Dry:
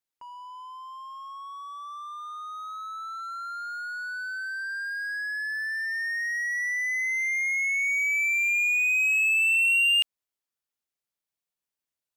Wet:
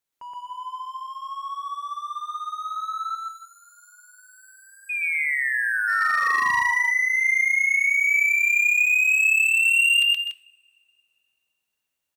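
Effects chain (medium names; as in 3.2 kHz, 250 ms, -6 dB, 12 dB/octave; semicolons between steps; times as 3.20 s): time-frequency box 3.16–5.88 s, 880–6600 Hz -27 dB; in parallel at -4 dB: saturation -26.5 dBFS, distortion -11 dB; on the sum: painted sound fall, 4.89–6.62 s, 930–2500 Hz -27 dBFS; loudspeakers at several distances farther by 42 m -1 dB, 86 m -12 dB, 99 m -10 dB; overload inside the chain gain 16 dB; band-stop 5 kHz, Q 13; on a send at -13.5 dB: reverberation, pre-delay 3 ms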